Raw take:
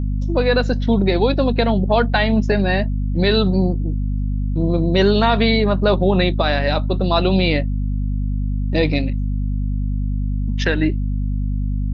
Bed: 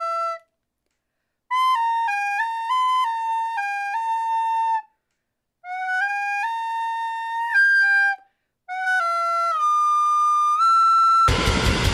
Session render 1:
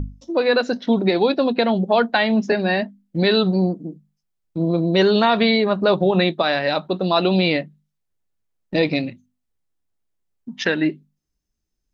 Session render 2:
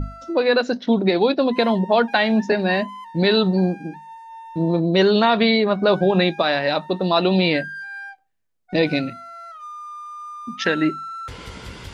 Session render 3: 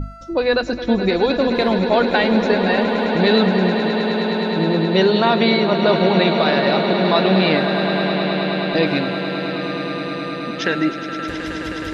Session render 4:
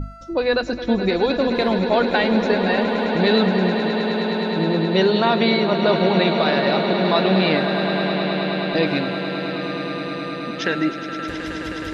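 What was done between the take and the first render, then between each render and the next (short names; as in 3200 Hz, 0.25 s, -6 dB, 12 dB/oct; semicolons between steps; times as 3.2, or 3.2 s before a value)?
notches 50/100/150/200/250 Hz
add bed -16.5 dB
swelling echo 0.105 s, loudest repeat 8, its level -12 dB
gain -2 dB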